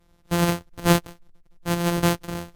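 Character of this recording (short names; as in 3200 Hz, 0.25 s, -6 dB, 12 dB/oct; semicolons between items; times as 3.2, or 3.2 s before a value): a buzz of ramps at a fixed pitch in blocks of 256 samples; tremolo saw up 0.89 Hz, depth 40%; Vorbis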